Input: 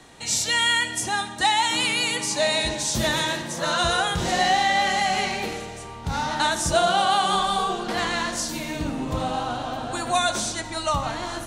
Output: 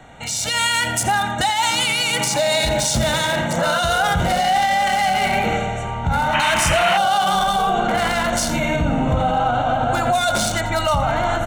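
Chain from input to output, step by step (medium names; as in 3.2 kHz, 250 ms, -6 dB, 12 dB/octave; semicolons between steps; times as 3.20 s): local Wiener filter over 9 samples; comb 1.4 ms, depth 55%; peak limiter -23 dBFS, peak gain reduction 16 dB; treble shelf 6.2 kHz +5 dB; delay 85 ms -13.5 dB; level rider gain up to 6 dB; painted sound noise, 6.33–6.98 s, 810–3200 Hz -28 dBFS; trim +6 dB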